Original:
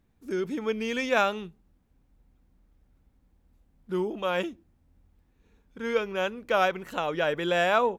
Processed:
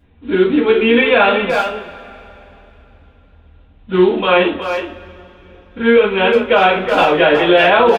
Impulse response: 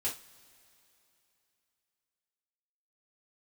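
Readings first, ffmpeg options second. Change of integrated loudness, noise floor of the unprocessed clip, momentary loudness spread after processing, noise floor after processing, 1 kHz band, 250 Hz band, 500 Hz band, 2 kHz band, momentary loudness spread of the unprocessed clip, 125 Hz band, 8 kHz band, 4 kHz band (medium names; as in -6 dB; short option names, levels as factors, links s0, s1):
+15.0 dB, -68 dBFS, 10 LU, -48 dBFS, +14.0 dB, +17.0 dB, +15.5 dB, +15.0 dB, 10 LU, +13.0 dB, no reading, +15.5 dB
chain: -filter_complex "[0:a]aresample=8000,acrusher=bits=5:mode=log:mix=0:aa=0.000001,aresample=44100,asplit=2[s0][s1];[s1]adelay=370,highpass=300,lowpass=3400,asoftclip=type=hard:threshold=0.112,volume=0.398[s2];[s0][s2]amix=inputs=2:normalize=0[s3];[1:a]atrim=start_sample=2205[s4];[s3][s4]afir=irnorm=-1:irlink=0,alimiter=level_in=5.96:limit=0.891:release=50:level=0:latency=1,volume=0.891"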